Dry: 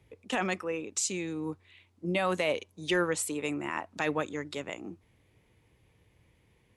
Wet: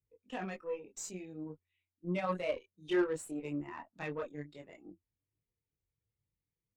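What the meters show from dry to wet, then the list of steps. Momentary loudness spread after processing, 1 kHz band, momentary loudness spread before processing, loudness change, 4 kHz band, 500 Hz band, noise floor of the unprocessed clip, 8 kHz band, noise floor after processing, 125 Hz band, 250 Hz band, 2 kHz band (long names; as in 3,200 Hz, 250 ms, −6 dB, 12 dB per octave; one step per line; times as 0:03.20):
17 LU, −8.0 dB, 11 LU, −6.5 dB, −13.5 dB, −5.0 dB, −68 dBFS, −13.5 dB, below −85 dBFS, −5.0 dB, −4.5 dB, −10.5 dB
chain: multi-voice chorus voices 6, 0.58 Hz, delay 24 ms, depth 4.2 ms
harmonic generator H 2 −11 dB, 8 −19 dB, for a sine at −18 dBFS
every bin expanded away from the loudest bin 1.5 to 1
level −4 dB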